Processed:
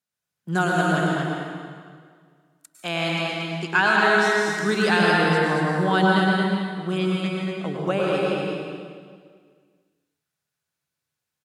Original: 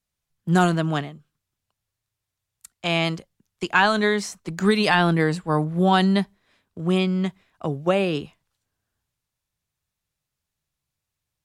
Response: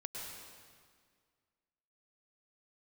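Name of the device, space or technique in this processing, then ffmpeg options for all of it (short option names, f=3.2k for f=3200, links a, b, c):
stadium PA: -filter_complex "[0:a]highpass=160,equalizer=f=1.5k:t=o:w=0.23:g=7,aecho=1:1:145.8|230.3:0.282|0.631[a];[1:a]atrim=start_sample=2205[b];[a][b]afir=irnorm=-1:irlink=0"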